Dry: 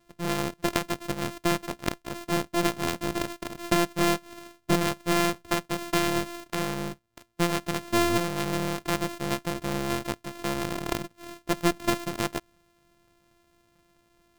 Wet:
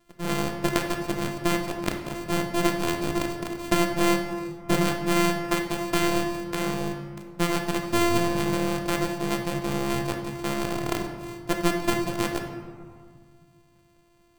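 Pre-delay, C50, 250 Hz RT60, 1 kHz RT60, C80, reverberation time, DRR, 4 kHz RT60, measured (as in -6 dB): 3 ms, 5.5 dB, 2.4 s, 1.9 s, 7.5 dB, 1.8 s, 3.0 dB, 1.0 s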